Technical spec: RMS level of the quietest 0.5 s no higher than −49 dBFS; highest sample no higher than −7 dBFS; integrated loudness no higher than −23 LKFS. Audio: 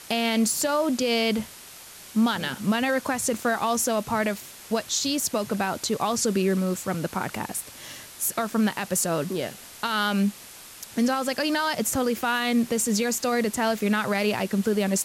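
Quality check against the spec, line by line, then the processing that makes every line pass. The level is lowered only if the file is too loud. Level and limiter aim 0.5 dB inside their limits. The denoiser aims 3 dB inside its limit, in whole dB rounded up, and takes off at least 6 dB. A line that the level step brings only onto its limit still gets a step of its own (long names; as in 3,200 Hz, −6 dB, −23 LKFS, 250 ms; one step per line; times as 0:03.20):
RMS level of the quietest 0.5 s −45 dBFS: out of spec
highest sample −13.0 dBFS: in spec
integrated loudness −25.0 LKFS: in spec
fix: broadband denoise 7 dB, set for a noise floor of −45 dBFS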